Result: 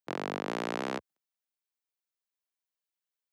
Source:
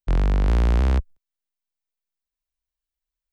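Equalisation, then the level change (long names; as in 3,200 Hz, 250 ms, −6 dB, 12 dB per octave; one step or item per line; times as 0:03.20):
Bessel high-pass filter 330 Hz, order 4
−2.0 dB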